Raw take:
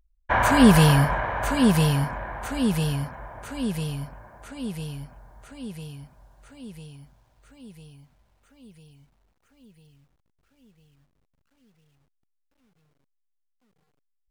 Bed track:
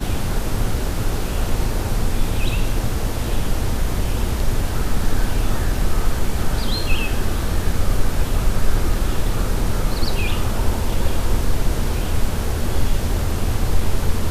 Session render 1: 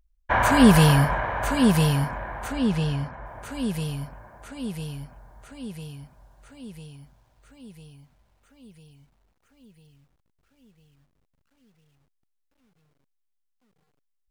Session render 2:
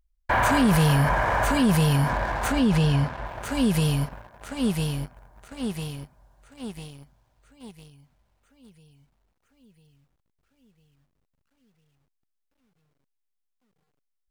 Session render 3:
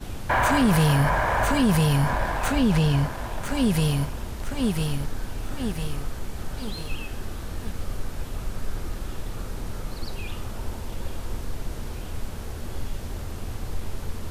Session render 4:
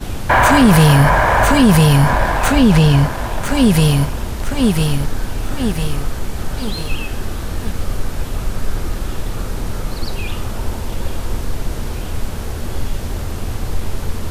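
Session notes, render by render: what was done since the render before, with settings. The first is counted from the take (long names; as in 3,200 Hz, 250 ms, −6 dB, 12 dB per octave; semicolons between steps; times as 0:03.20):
0:02.52–0:03.26: high-frequency loss of the air 76 metres
leveller curve on the samples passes 2; brickwall limiter −14.5 dBFS, peak gain reduction 11 dB
mix in bed track −12.5 dB
level +10 dB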